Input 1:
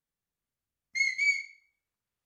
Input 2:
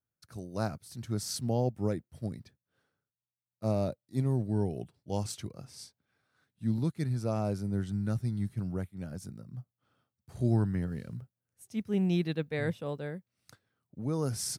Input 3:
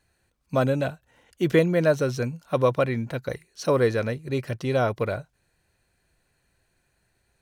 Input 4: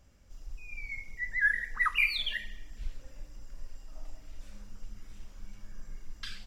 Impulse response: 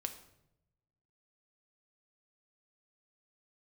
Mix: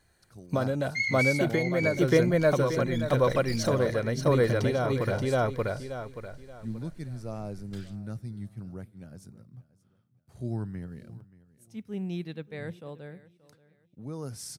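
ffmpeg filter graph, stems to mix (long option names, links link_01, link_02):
-filter_complex "[0:a]lowpass=5000,dynaudnorm=framelen=260:gausssize=9:maxgain=11.5dB,volume=-1dB,asplit=2[link_01][link_02];[link_02]volume=-10.5dB[link_03];[1:a]volume=-7dB,asplit=3[link_04][link_05][link_06];[link_05]volume=-16dB[link_07];[link_06]volume=-19dB[link_08];[2:a]bandreject=frequency=2600:width=7,volume=3dB,asplit=2[link_09][link_10];[link_10]volume=-6dB[link_11];[3:a]aeval=exprs='abs(val(0))':channel_layout=same,adelay=1500,volume=-9dB[link_12];[link_01][link_09][link_12]amix=inputs=3:normalize=0,acompressor=threshold=-25dB:ratio=6,volume=0dB[link_13];[4:a]atrim=start_sample=2205[link_14];[link_07][link_14]afir=irnorm=-1:irlink=0[link_15];[link_03][link_08][link_11]amix=inputs=3:normalize=0,aecho=0:1:579|1158|1737|2316:1|0.28|0.0784|0.022[link_16];[link_04][link_13][link_15][link_16]amix=inputs=4:normalize=0"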